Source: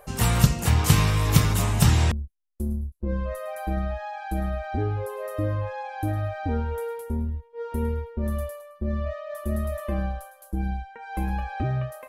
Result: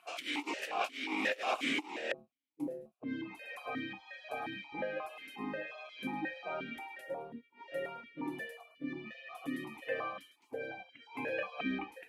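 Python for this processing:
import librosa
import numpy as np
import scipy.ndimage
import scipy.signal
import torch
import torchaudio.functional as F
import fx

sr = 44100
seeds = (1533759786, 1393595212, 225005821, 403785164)

y = fx.spec_gate(x, sr, threshold_db=-20, keep='weak')
y = fx.over_compress(y, sr, threshold_db=-35.0, ratio=-0.5)
y = fx.vowel_held(y, sr, hz=5.6)
y = y * 10.0 ** (13.5 / 20.0)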